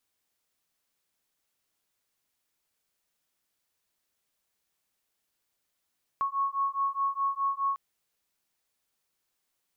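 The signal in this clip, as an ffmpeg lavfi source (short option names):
-f lavfi -i "aevalsrc='0.0335*(sin(2*PI*1100*t)+sin(2*PI*1104.8*t))':d=1.55:s=44100"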